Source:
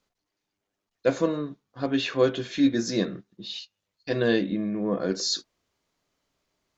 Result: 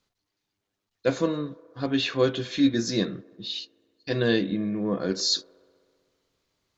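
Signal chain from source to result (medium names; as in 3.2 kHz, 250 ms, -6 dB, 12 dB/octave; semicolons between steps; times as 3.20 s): fifteen-band graphic EQ 100 Hz +6 dB, 630 Hz -3 dB, 4 kHz +4 dB; feedback echo behind a band-pass 64 ms, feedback 81%, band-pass 690 Hz, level -23 dB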